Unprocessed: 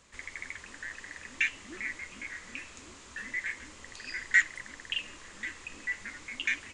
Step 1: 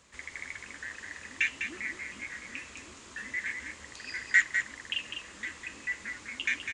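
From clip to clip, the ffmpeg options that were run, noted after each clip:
-filter_complex "[0:a]highpass=46,asplit=2[s0][s1];[s1]aecho=0:1:202:0.447[s2];[s0][s2]amix=inputs=2:normalize=0"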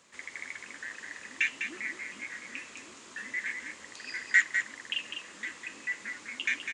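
-af "highpass=180"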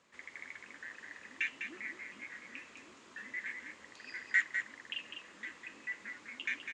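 -af "aemphasis=mode=reproduction:type=50fm,volume=0.531"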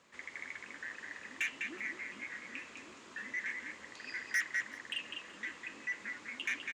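-af "asoftclip=type=tanh:threshold=0.0266,aecho=1:1:375:0.0841,volume=1.5"

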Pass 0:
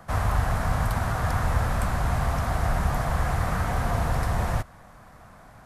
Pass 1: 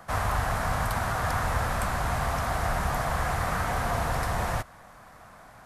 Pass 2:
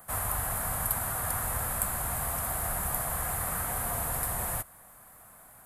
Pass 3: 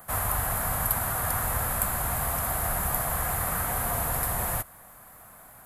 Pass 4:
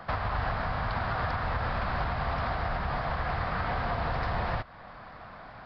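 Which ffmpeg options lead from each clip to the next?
-af "lowshelf=f=340:g=-8,volume=1.26"
-af "aexciter=amount=14.4:drive=2.6:freq=8100,volume=0.422"
-af "equalizer=f=8900:w=2.6:g=-6,volume=1.68"
-af "aresample=11025,aresample=44100,alimiter=level_in=1.58:limit=0.0631:level=0:latency=1:release=329,volume=0.631,volume=2.24"

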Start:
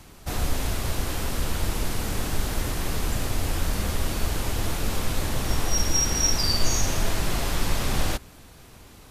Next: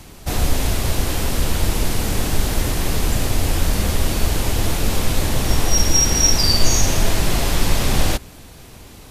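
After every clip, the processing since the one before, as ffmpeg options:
-af "equalizer=f=1300:w=1.5:g=-3.5,volume=2.37"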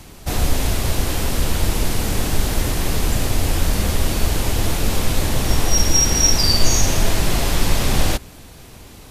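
-af anull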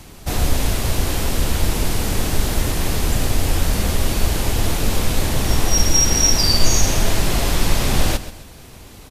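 -af "aecho=1:1:133|266|399:0.2|0.0678|0.0231"

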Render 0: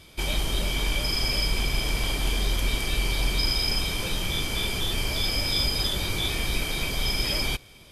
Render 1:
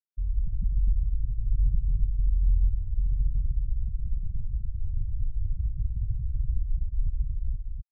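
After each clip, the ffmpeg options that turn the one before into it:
-filter_complex "[0:a]lowpass=f=1000:p=1,afftfilt=real='re*gte(hypot(re,im),0.2)':imag='im*gte(hypot(re,im),0.2)':win_size=1024:overlap=0.75,asplit=2[s0][s1];[s1]aecho=0:1:143|249:0.266|0.531[s2];[s0][s2]amix=inputs=2:normalize=0,volume=1.33"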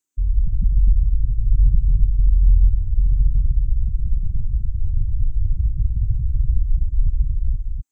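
-af "superequalizer=6b=3.16:8b=0.562:15b=3.98,volume=2.82"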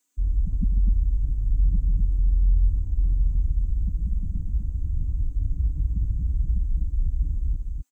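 -filter_complex "[0:a]highpass=f=190:p=1,aecho=1:1:4.1:0.78,asplit=2[s0][s1];[s1]alimiter=limit=0.0708:level=0:latency=1:release=22,volume=0.944[s2];[s0][s2]amix=inputs=2:normalize=0"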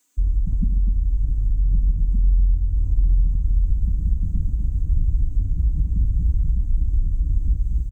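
-filter_complex "[0:a]bandreject=f=65.66:t=h:w=4,bandreject=f=131.32:t=h:w=4,bandreject=f=196.98:t=h:w=4,bandreject=f=262.64:t=h:w=4,bandreject=f=328.3:t=h:w=4,bandreject=f=393.96:t=h:w=4,bandreject=f=459.62:t=h:w=4,bandreject=f=525.28:t=h:w=4,bandreject=f=590.94:t=h:w=4,bandreject=f=656.6:t=h:w=4,bandreject=f=722.26:t=h:w=4,acompressor=threshold=0.0631:ratio=6,asplit=2[s0][s1];[s1]adelay=1516,volume=0.447,highshelf=f=4000:g=-34.1[s2];[s0][s2]amix=inputs=2:normalize=0,volume=2.51"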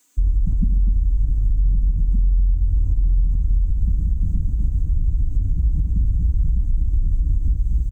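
-af "alimiter=limit=0.133:level=0:latency=1:release=152,volume=2"

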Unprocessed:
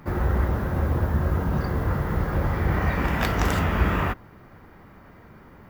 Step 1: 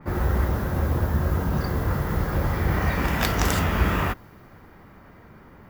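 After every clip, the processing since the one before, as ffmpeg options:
-af "adynamicequalizer=threshold=0.00447:dfrequency=3500:dqfactor=0.7:tfrequency=3500:tqfactor=0.7:attack=5:release=100:ratio=0.375:range=4:mode=boostabove:tftype=highshelf"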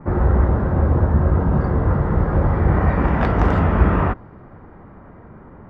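-af "lowpass=1200,volume=2.24"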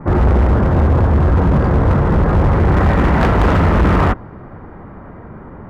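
-af "asoftclip=type=hard:threshold=0.15,volume=2.37"

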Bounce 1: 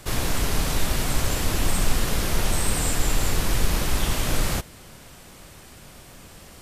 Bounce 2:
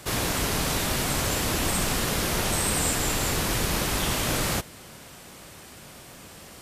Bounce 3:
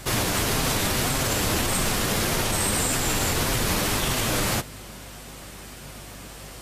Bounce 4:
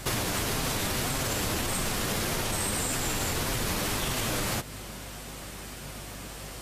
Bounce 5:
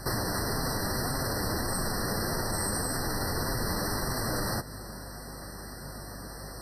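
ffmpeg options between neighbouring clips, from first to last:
-af "highpass=f=120:p=1,volume=1.19"
-af "flanger=delay=7.5:depth=2.8:regen=-32:speed=1.7:shape=sinusoidal,alimiter=limit=0.0841:level=0:latency=1:release=50,aeval=exprs='val(0)+0.00251*(sin(2*PI*50*n/s)+sin(2*PI*2*50*n/s)/2+sin(2*PI*3*50*n/s)/3+sin(2*PI*4*50*n/s)/4+sin(2*PI*5*50*n/s)/5)':c=same,volume=2.37"
-af "acompressor=threshold=0.0501:ratio=6"
-af "afftfilt=real='re*eq(mod(floor(b*sr/1024/2000),2),0)':imag='im*eq(mod(floor(b*sr/1024/2000),2),0)':win_size=1024:overlap=0.75"

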